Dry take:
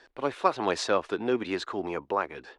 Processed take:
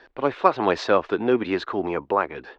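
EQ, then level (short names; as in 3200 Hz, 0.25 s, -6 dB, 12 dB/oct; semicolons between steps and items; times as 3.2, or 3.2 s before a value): air absorption 200 m; +7.0 dB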